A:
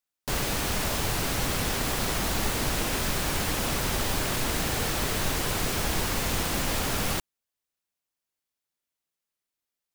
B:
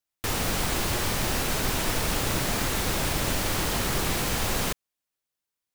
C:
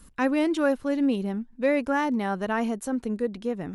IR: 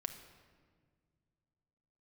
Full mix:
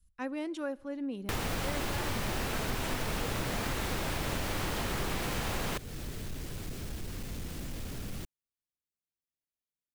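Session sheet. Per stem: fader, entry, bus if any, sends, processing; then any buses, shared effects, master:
−13.5 dB, 1.05 s, no send, parametric band 880 Hz −7 dB 1.4 octaves; soft clipping −26.5 dBFS, distortion −13 dB; low-shelf EQ 480 Hz +10 dB
+2.5 dB, 1.05 s, no send, bass and treble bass 0 dB, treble −6 dB
−11.0 dB, 0.00 s, send −14.5 dB, multiband upward and downward expander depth 70%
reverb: on, RT60 1.8 s, pre-delay 6 ms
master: downward compressor 2.5 to 1, threshold −34 dBFS, peak gain reduction 10 dB

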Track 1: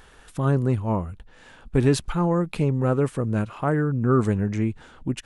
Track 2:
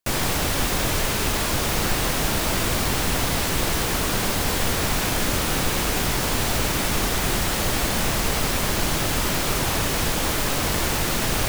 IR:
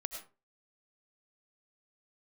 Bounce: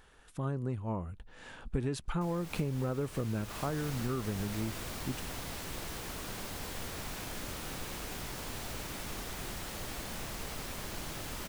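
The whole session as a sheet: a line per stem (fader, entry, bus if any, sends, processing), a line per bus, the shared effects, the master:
0:00.97 −10 dB → 0:01.45 −0.5 dB → 0:03.25 −0.5 dB → 0:03.82 −11 dB, 0.00 s, no send, no processing
−18.0 dB, 2.15 s, no send, no processing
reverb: not used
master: downward compressor 20 to 1, threshold −29 dBFS, peak gain reduction 16 dB

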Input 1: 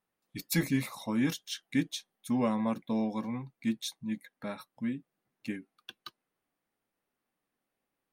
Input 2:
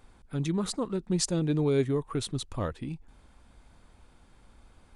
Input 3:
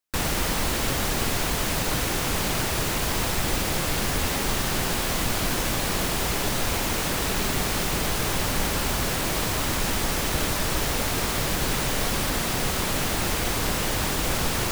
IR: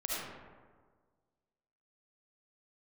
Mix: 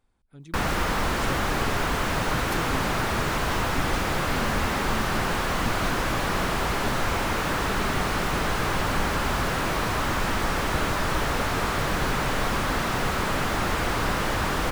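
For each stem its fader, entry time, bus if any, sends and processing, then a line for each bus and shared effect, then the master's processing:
−7.0 dB, 2.00 s, no send, no processing
−15.0 dB, 0.00 s, no send, no processing
0.0 dB, 0.40 s, no send, parametric band 1,300 Hz +6.5 dB 1.3 octaves; slew-rate limiting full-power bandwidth 110 Hz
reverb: not used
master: no processing

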